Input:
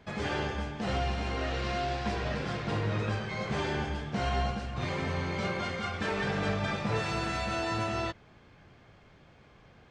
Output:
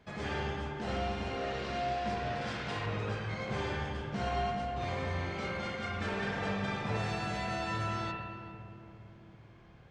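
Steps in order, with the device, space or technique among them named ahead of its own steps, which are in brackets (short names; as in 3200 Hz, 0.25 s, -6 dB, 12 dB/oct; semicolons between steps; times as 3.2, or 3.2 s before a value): 2.41–2.86 tilt shelf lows -5 dB, about 740 Hz; dub delay into a spring reverb (darkening echo 0.401 s, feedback 65%, low-pass 830 Hz, level -9 dB; spring tank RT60 1.3 s, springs 55 ms, chirp 70 ms, DRR 2 dB); gain -5.5 dB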